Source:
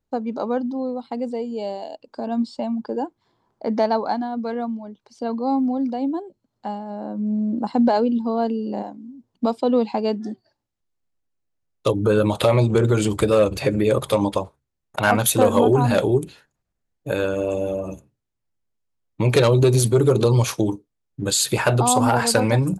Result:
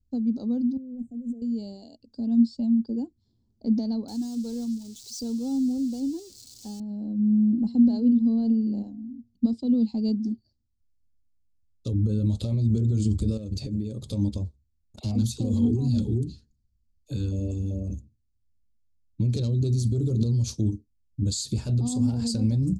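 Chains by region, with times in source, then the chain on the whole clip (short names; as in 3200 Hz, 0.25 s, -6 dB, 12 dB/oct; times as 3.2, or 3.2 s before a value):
0.77–1.42 negative-ratio compressor -35 dBFS + brick-wall FIR band-stop 750–6000 Hz
4.08–6.8 switching spikes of -23.5 dBFS + comb 2.3 ms, depth 46%
7.52–9.53 high shelf 5500 Hz -5.5 dB + de-hum 233.2 Hz, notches 5
13.37–14.1 bell 65 Hz -11.5 dB 0.85 oct + compressor, threshold -24 dBFS
14.99–17.9 bell 4600 Hz +4.5 dB 0.37 oct + LFO notch square 2.6 Hz 600–1500 Hz + dispersion lows, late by 52 ms, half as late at 550 Hz
whole clip: resonant low shelf 120 Hz +13 dB, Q 1.5; limiter -13.5 dBFS; EQ curve 150 Hz 0 dB, 230 Hz +11 dB, 340 Hz -4 dB, 1000 Hz -25 dB, 1900 Hz -26 dB, 3000 Hz -14 dB, 4500 Hz 0 dB, 7700 Hz -3 dB, 11000 Hz -16 dB; gain -4 dB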